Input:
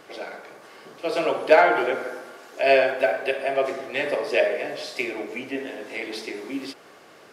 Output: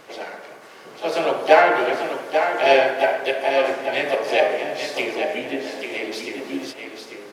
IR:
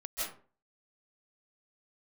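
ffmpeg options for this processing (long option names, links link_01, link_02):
-filter_complex "[0:a]aecho=1:1:842:0.447,asplit=2[link_01][link_02];[link_02]asetrate=55563,aresample=44100,atempo=0.793701,volume=-7dB[link_03];[link_01][link_03]amix=inputs=2:normalize=0,asplit=2[link_04][link_05];[1:a]atrim=start_sample=2205,adelay=143[link_06];[link_05][link_06]afir=irnorm=-1:irlink=0,volume=-19.5dB[link_07];[link_04][link_07]amix=inputs=2:normalize=0,volume=1.5dB"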